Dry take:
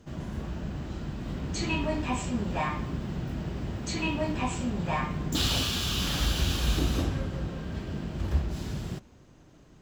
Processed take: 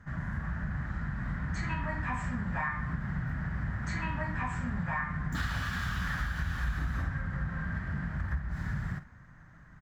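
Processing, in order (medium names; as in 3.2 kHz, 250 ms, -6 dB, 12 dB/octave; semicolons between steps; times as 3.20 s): FFT filter 170 Hz 0 dB, 380 Hz -18 dB, 1.8 kHz +11 dB, 2.7 kHz -14 dB; compression, threshold -32 dBFS, peak gain reduction 12 dB; doubling 49 ms -13 dB; trim +2.5 dB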